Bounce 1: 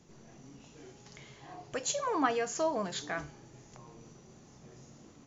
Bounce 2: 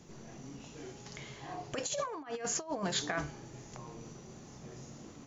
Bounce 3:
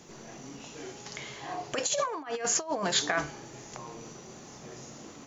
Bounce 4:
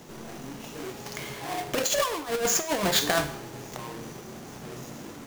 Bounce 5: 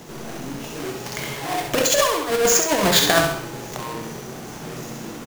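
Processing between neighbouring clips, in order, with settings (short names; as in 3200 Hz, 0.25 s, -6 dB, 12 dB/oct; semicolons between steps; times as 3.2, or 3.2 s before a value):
negative-ratio compressor -36 dBFS, ratio -0.5; gain +1 dB
low shelf 220 Hz -12 dB; gain +7.5 dB
half-waves squared off; Schroeder reverb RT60 0.64 s, combs from 32 ms, DRR 11.5 dB
feedback echo 66 ms, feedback 38%, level -5.5 dB; gain +6.5 dB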